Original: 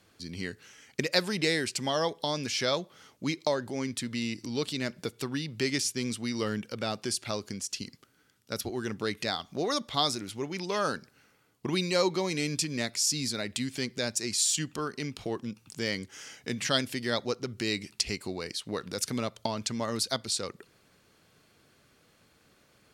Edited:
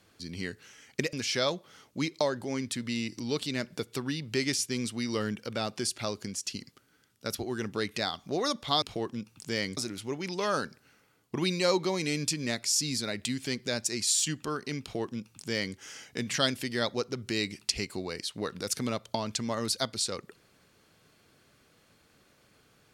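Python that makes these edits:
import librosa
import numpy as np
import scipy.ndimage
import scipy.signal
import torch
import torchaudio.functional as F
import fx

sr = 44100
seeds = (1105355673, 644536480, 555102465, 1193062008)

y = fx.edit(x, sr, fx.cut(start_s=1.13, length_s=1.26),
    fx.duplicate(start_s=15.12, length_s=0.95, to_s=10.08), tone=tone)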